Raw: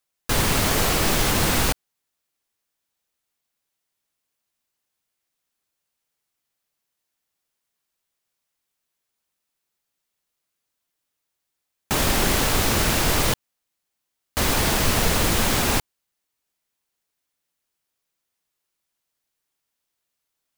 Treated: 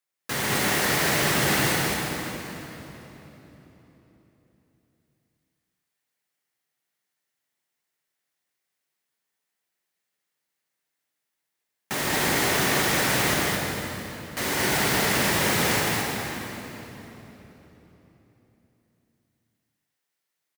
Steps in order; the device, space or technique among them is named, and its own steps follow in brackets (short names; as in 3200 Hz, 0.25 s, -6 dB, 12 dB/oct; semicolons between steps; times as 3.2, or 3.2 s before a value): stadium PA (HPF 130 Hz 12 dB/oct; bell 1900 Hz +7 dB 0.41 oct; loudspeakers at several distances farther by 53 m -10 dB, 74 m -3 dB; reverb RT60 3.7 s, pre-delay 5 ms, DRR -1.5 dB); gain -7.5 dB